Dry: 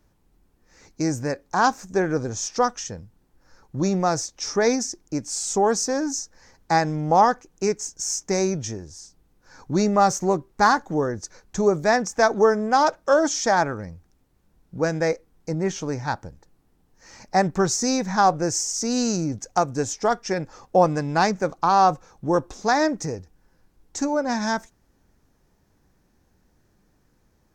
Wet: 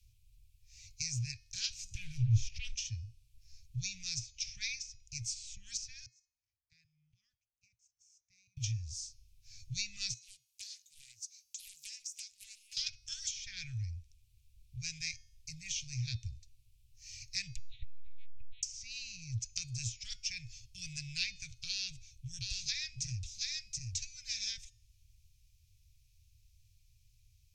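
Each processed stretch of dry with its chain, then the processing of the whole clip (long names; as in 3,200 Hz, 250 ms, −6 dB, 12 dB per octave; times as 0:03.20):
0:01.94–0:02.75: spectral tilt −2 dB per octave + leveller curve on the samples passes 2 + downward compressor 5 to 1, threshold −20 dBFS
0:06.06–0:08.57: resonant band-pass 490 Hz, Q 5.3 + output level in coarse steps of 11 dB
0:10.14–0:12.77: first difference + downward compressor, threshold −38 dBFS + highs frequency-modulated by the lows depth 0.47 ms
0:17.56–0:18.63: one-pitch LPC vocoder at 8 kHz 280 Hz + saturating transformer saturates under 300 Hz
0:21.68–0:24.15: Butterworth band-reject 1,100 Hz, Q 2 + single-tap delay 726 ms −4 dB
whole clip: Chebyshev band-stop filter 120–2,400 Hz, order 5; treble cut that deepens with the level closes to 2,100 Hz, closed at −27.5 dBFS; hum removal 361.4 Hz, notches 19; level +1 dB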